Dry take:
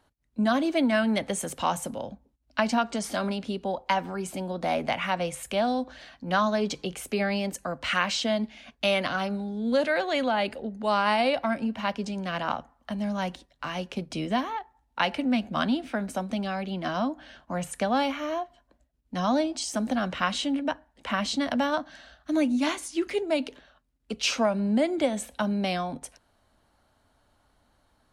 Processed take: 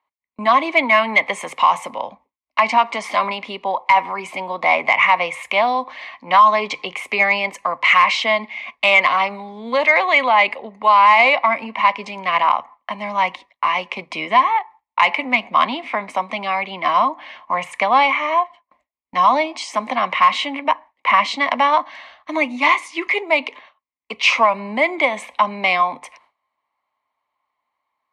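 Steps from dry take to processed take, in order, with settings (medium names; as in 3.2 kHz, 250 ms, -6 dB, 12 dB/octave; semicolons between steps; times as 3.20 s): two resonant band-passes 1.5 kHz, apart 1 oct; in parallel at -5 dB: saturation -27.5 dBFS, distortion -14 dB; on the sum: gate with hold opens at -54 dBFS; loudness maximiser +22.5 dB; trim -3 dB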